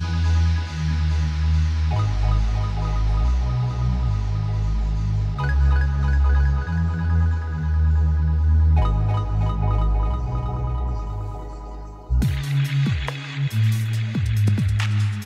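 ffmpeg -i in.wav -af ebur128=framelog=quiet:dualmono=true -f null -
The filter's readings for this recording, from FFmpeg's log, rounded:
Integrated loudness:
  I:         -19.2 LUFS
  Threshold: -29.4 LUFS
Loudness range:
  LRA:         4.4 LU
  Threshold: -39.5 LUFS
  LRA low:   -22.2 LUFS
  LRA high:  -17.8 LUFS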